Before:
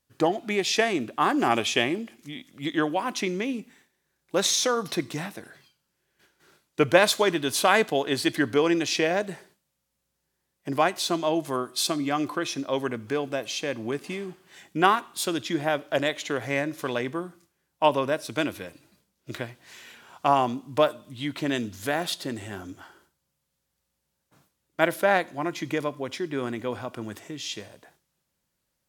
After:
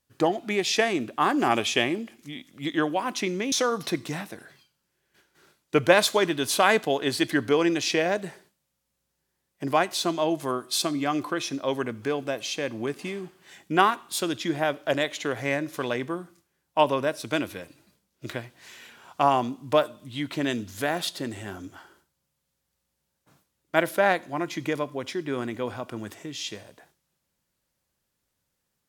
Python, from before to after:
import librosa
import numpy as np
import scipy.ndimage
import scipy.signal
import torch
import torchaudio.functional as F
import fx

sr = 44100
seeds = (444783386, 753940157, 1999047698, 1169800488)

y = fx.edit(x, sr, fx.cut(start_s=3.52, length_s=1.05), tone=tone)